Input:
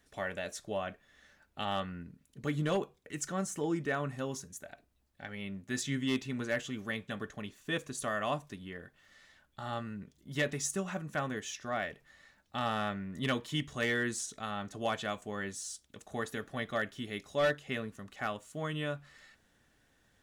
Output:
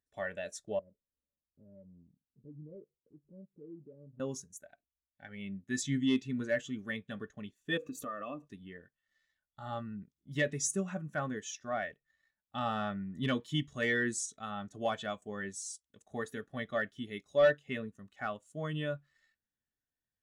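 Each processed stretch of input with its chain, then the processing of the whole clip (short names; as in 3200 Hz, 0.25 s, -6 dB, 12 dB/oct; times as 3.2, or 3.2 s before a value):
0.79–4.2 steep low-pass 590 Hz 96 dB/oct + compressor 2:1, threshold -54 dBFS
7.77–8.48 small resonant body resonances 290/480/1200/2600 Hz, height 14 dB + compressor 5:1, threshold -36 dBFS + decimation joined by straight lines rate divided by 2×
whole clip: high shelf 3800 Hz +6.5 dB; sample leveller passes 1; spectral expander 1.5:1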